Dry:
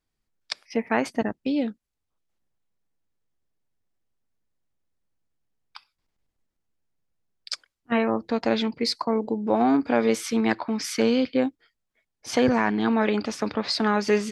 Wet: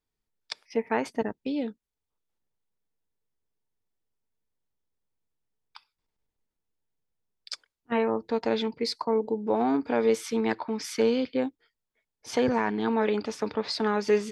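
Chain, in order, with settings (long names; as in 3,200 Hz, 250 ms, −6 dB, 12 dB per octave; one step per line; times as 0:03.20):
hollow resonant body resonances 440/910/3,500 Hz, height 7 dB
level −5.5 dB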